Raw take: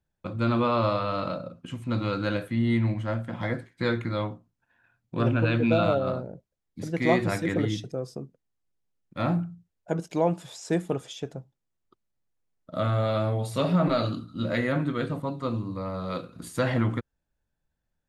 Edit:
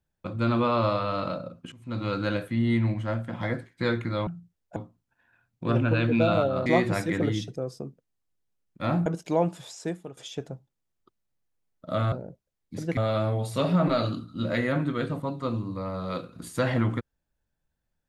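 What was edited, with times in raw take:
1.72–2.13 s: fade in, from -20 dB
6.17–7.02 s: move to 12.97 s
9.42–9.91 s: move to 4.27 s
10.57–11.02 s: fade out quadratic, to -14 dB

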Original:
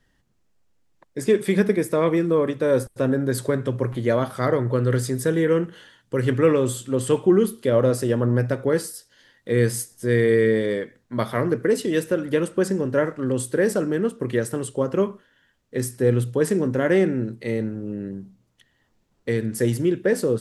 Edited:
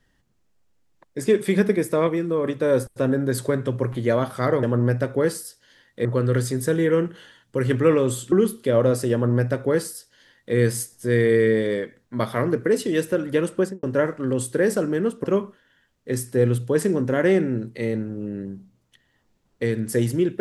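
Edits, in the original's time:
2.07–2.44 s: gain -3.5 dB
6.90–7.31 s: delete
8.12–9.54 s: copy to 4.63 s
12.57–12.82 s: studio fade out
14.23–14.90 s: delete

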